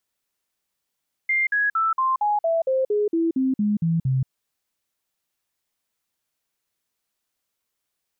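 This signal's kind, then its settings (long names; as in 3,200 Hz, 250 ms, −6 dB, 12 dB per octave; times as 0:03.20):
stepped sweep 2,100 Hz down, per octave 3, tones 13, 0.18 s, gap 0.05 s −18 dBFS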